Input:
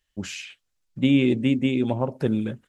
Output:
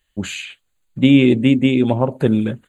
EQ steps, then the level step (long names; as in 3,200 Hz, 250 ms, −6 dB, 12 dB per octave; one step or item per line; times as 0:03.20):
Butterworth band-reject 5,400 Hz, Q 3
+7.5 dB